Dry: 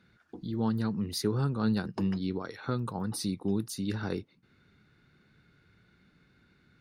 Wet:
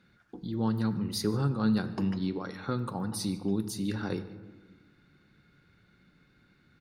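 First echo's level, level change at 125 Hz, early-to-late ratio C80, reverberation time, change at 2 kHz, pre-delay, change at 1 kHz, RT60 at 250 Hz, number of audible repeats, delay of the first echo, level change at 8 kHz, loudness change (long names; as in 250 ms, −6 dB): −22.5 dB, +0.5 dB, 13.5 dB, 1.3 s, +0.5 dB, 4 ms, +0.5 dB, 1.9 s, 1, 150 ms, +0.5 dB, +1.0 dB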